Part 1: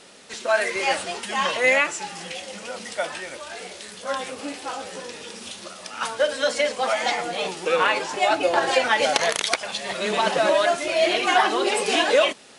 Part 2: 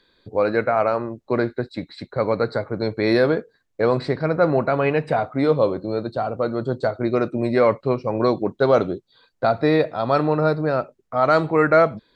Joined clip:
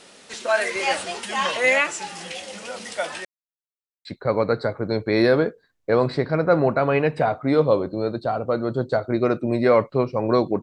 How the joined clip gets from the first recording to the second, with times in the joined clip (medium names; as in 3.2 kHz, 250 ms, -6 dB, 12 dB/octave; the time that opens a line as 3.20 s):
part 1
3.25–4.05 s: mute
4.05 s: go over to part 2 from 1.96 s